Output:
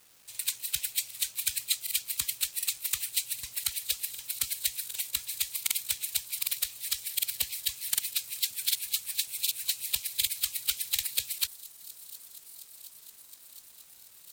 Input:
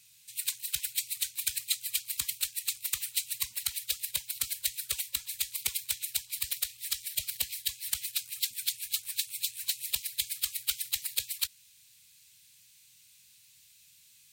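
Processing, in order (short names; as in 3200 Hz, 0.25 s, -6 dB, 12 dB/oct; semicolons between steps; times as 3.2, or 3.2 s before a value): bit-crush 9-bit; thin delay 0.717 s, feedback 77%, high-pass 5300 Hz, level -16.5 dB; crackling interface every 0.76 s, samples 2048, repeat, from 0.3; gain +1.5 dB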